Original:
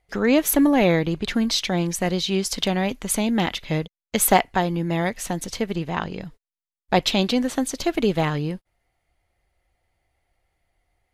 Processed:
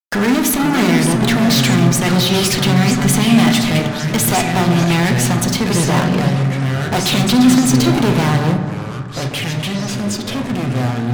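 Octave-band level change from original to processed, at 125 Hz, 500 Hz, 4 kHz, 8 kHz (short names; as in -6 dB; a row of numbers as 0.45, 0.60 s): +14.0, +4.0, +8.5, +8.5 dB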